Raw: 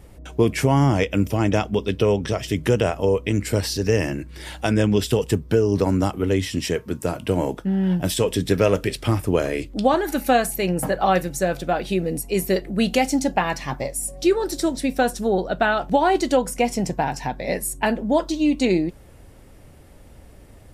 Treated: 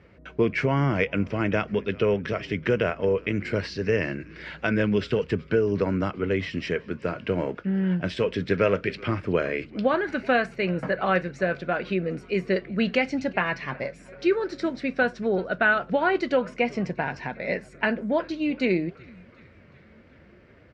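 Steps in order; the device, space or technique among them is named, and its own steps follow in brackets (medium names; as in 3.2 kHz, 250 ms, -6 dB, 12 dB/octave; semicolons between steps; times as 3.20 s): frequency-shifting delay pedal into a guitar cabinet (frequency-shifting echo 374 ms, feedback 65%, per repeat -130 Hz, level -24 dB; cabinet simulation 110–4000 Hz, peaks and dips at 120 Hz -4 dB, 290 Hz -5 dB, 810 Hz -9 dB, 1.5 kHz +6 dB, 2.2 kHz +5 dB, 3.5 kHz -7 dB); trim -2.5 dB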